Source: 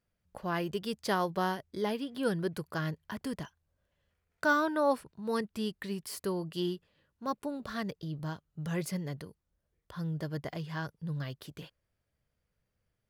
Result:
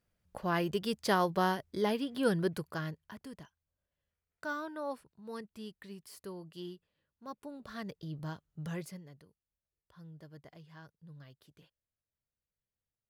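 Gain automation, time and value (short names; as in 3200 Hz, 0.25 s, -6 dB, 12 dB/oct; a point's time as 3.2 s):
2.47 s +1.5 dB
3.29 s -11 dB
7.27 s -11 dB
8.14 s -3 dB
8.67 s -3 dB
9.09 s -16 dB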